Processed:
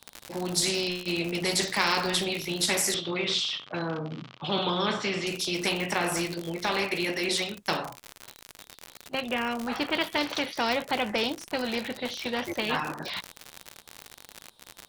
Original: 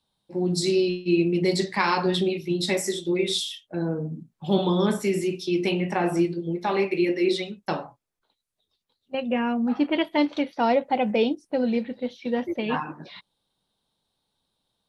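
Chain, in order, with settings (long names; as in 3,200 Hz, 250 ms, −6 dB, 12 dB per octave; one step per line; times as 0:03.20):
low-shelf EQ 360 Hz −5.5 dB
surface crackle 92 per second −40 dBFS
0:02.94–0:05.27: loudspeaker in its box 100–4,200 Hz, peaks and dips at 130 Hz +9 dB, 1,200 Hz +7 dB, 1,800 Hz −3 dB, 3,100 Hz +4 dB
every bin compressed towards the loudest bin 2 to 1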